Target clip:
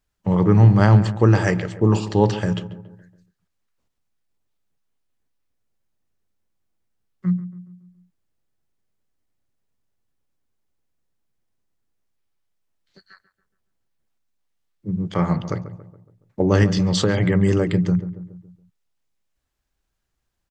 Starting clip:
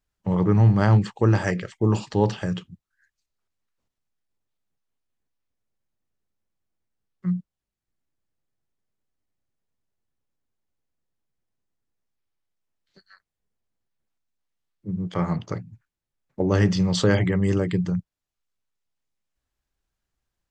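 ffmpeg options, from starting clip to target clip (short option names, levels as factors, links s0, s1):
-filter_complex "[0:a]asettb=1/sr,asplit=3[s0][s1][s2];[s0]atrim=end=16.634[s3];[s1]atrim=start=16.63:end=17.24,asetpts=PTS-STARTPTS,afade=t=in:d=0.004:c=qsin,afade=t=out:st=0.606:d=0.004:c=qsin,acompressor=threshold=0.112:ratio=6[s4];[s2]atrim=start=17.236[s5];[s3][s4]acrossfade=d=0.004:c1=hsin:c2=qsin[s6];[s6][s5]acrossfade=d=0.004:c1=qsin:c2=hsin,asplit=2[s7][s8];[s8]adelay=140,lowpass=f=1500:p=1,volume=0.224,asplit=2[s9][s10];[s10]adelay=140,lowpass=f=1500:p=1,volume=0.52,asplit=2[s11][s12];[s12]adelay=140,lowpass=f=1500:p=1,volume=0.52,asplit=2[s13][s14];[s14]adelay=140,lowpass=f=1500:p=1,volume=0.52,asplit=2[s15][s16];[s16]adelay=140,lowpass=f=1500:p=1,volume=0.52[s17];[s9][s11][s13][s15][s17]amix=inputs=5:normalize=0[s18];[s7][s18]amix=inputs=2:normalize=0,volume=1.58"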